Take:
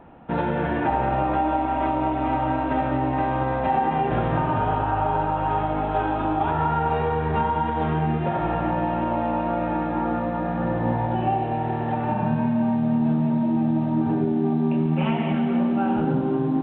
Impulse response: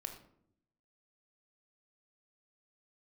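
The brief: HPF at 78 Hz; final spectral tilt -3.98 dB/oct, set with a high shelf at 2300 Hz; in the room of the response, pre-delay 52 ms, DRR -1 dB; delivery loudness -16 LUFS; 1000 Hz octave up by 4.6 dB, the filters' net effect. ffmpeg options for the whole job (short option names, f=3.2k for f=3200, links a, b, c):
-filter_complex "[0:a]highpass=78,equalizer=f=1k:t=o:g=4.5,highshelf=f=2.3k:g=8.5,asplit=2[a][b];[1:a]atrim=start_sample=2205,adelay=52[c];[b][c]afir=irnorm=-1:irlink=0,volume=3dB[d];[a][d]amix=inputs=2:normalize=0,volume=2.5dB"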